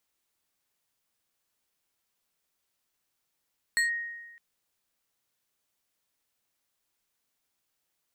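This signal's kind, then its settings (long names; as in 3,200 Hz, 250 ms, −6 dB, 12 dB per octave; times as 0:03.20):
two-operator FM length 0.61 s, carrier 1,870 Hz, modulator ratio 3.29, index 0.75, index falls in 0.13 s linear, decay 1.21 s, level −20.5 dB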